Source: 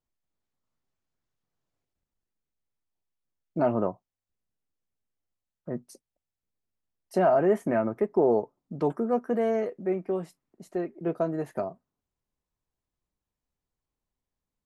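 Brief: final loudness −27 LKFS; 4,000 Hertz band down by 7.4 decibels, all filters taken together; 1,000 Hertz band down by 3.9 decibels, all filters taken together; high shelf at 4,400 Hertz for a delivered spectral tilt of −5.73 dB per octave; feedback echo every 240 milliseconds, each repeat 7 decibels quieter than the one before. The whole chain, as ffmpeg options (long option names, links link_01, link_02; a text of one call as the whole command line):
ffmpeg -i in.wav -af "equalizer=frequency=1000:width_type=o:gain=-6,equalizer=frequency=4000:width_type=o:gain=-7,highshelf=frequency=4400:gain=-7,aecho=1:1:240|480|720|960|1200:0.447|0.201|0.0905|0.0407|0.0183,volume=2dB" out.wav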